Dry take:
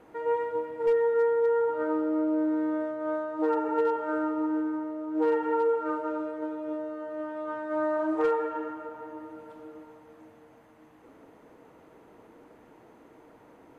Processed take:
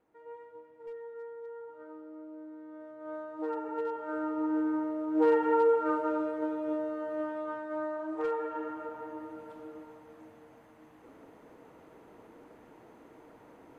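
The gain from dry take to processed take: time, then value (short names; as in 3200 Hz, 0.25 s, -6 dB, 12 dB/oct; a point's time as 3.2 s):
2.66 s -19.5 dB
3.2 s -8.5 dB
3.91 s -8.5 dB
4.76 s +1 dB
7.22 s +1 dB
8.02 s -9.5 dB
8.83 s -0.5 dB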